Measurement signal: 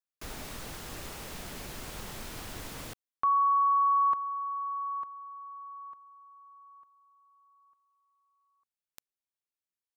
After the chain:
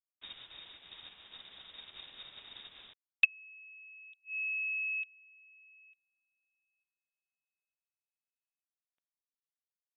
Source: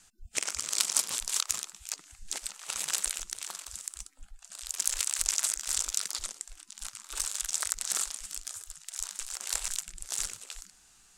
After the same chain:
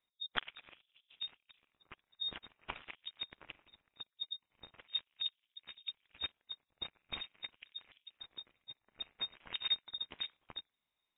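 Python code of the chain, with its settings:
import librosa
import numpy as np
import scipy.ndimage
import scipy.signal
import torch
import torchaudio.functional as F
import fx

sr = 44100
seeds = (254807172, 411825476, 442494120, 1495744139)

y = fx.env_lowpass_down(x, sr, base_hz=420.0, full_db=-26.0)
y = fx.freq_invert(y, sr, carrier_hz=3700)
y = fx.upward_expand(y, sr, threshold_db=-56.0, expansion=2.5)
y = y * 10.0 ** (7.5 / 20.0)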